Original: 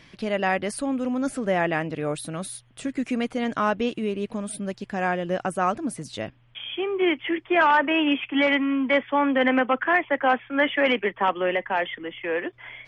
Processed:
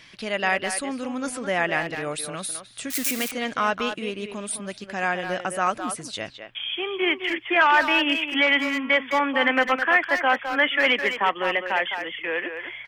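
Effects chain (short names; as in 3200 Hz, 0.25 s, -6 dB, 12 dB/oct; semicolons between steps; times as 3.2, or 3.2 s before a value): 2.9–3.31 switching spikes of -21 dBFS; tilt shelf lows -6 dB, about 940 Hz; speakerphone echo 0.21 s, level -7 dB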